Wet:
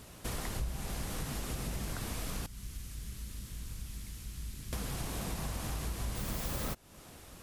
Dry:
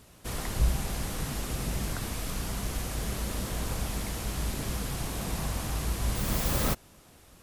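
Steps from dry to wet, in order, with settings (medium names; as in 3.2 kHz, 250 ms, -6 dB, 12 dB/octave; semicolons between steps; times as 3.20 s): 2.46–4.73 s: amplifier tone stack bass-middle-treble 6-0-2; compression 4:1, threshold -39 dBFS, peak gain reduction 16.5 dB; trim +3.5 dB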